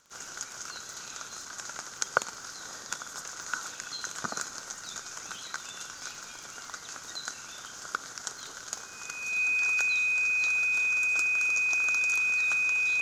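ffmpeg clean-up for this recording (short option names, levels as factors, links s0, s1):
-af "adeclick=t=4,bandreject=f=2500:w=30"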